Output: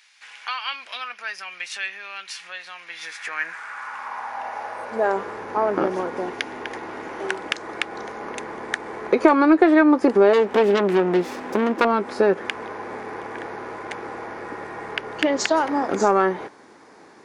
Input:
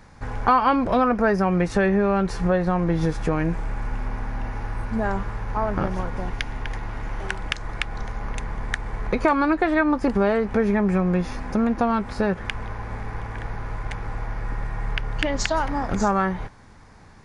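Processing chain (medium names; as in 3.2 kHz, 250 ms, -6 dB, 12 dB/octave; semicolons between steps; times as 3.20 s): 10.33–11.85 s: self-modulated delay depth 0.63 ms; high-pass sweep 2.8 kHz -> 350 Hz, 2.79–5.42 s; in parallel at -11 dB: saturation -13.5 dBFS, distortion -13 dB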